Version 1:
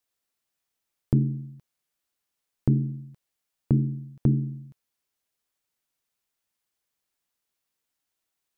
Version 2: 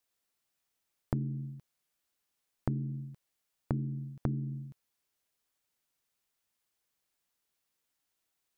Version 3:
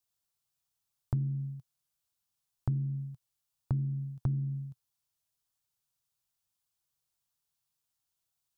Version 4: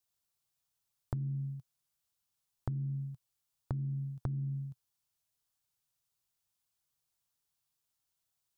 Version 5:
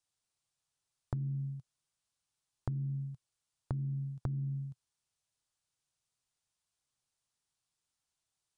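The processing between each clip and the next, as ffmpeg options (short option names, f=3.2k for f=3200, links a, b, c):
-af "acompressor=threshold=-30dB:ratio=6"
-af "equalizer=f=125:t=o:w=1:g=8,equalizer=f=250:t=o:w=1:g=-9,equalizer=f=500:t=o:w=1:g=-7,equalizer=f=2k:t=o:w=1:g=-9,volume=-1dB"
-af "acompressor=threshold=-33dB:ratio=4"
-af "aresample=22050,aresample=44100"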